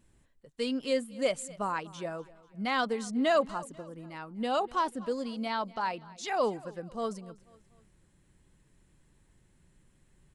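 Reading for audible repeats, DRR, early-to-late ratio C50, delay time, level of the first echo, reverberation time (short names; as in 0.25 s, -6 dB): 3, none, none, 0.245 s, -21.0 dB, none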